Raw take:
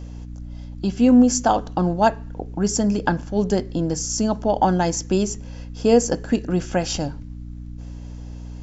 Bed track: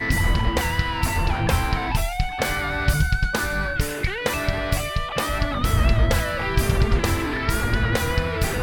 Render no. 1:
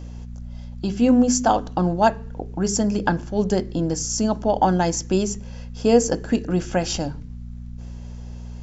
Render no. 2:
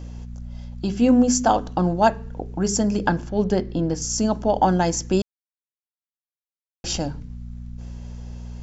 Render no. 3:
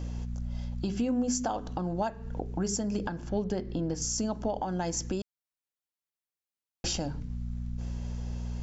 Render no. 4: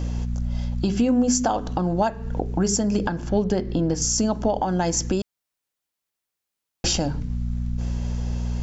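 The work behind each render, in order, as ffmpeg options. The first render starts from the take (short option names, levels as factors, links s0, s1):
-af "bandreject=f=50:t=h:w=4,bandreject=f=100:t=h:w=4,bandreject=f=150:t=h:w=4,bandreject=f=200:t=h:w=4,bandreject=f=250:t=h:w=4,bandreject=f=300:t=h:w=4,bandreject=f=350:t=h:w=4,bandreject=f=400:t=h:w=4,bandreject=f=450:t=h:w=4"
-filter_complex "[0:a]asettb=1/sr,asplit=3[s0][s1][s2];[s0]atrim=end=3.294[s3];[s1]atrim=start=3.29:end=4.02,asetpts=PTS-STARTPTS,afade=t=in:d=0.004:c=qsin,afade=t=out:st=0.726:d=0.004:c=qsin,lowpass=4400[s4];[s2]atrim=start=4.016[s5];[s3][s4]acrossfade=d=0.004:c1=hsin:c2=qsin[s6];[s6][s5]acrossfade=d=0.004:c1=qsin:c2=hsin,asplit=3[s7][s8][s9];[s7]atrim=end=5.22,asetpts=PTS-STARTPTS,afade=t=out:st=5.216:d=0.004:c=hsin[s10];[s8]atrim=start=5.22:end=6.84,asetpts=PTS-STARTPTS,volume=0[s11];[s9]atrim=start=6.84,asetpts=PTS-STARTPTS,afade=t=in:d=0.004:c=hsin[s12];[s10][s11][s12]concat=n=3:v=0:a=1"
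-af "acompressor=threshold=0.0631:ratio=6,alimiter=limit=0.0944:level=0:latency=1:release=369"
-af "volume=2.82"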